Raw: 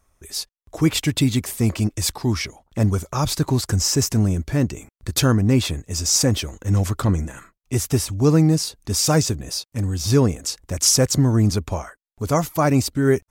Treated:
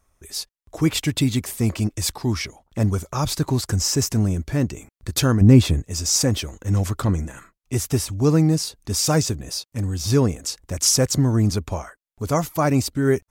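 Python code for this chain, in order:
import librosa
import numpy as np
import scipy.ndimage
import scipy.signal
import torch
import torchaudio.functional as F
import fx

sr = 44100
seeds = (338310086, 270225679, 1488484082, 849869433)

y = fx.low_shelf(x, sr, hz=450.0, db=9.0, at=(5.41, 5.83))
y = y * 10.0 ** (-1.5 / 20.0)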